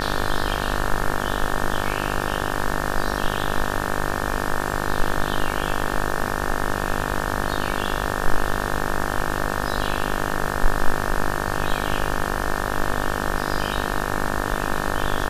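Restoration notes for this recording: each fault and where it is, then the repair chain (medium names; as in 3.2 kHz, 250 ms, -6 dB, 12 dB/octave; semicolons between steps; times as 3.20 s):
buzz 50 Hz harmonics 36 -26 dBFS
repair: de-hum 50 Hz, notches 36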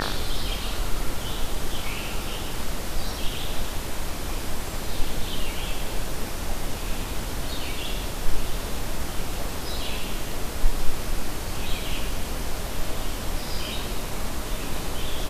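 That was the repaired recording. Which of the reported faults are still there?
nothing left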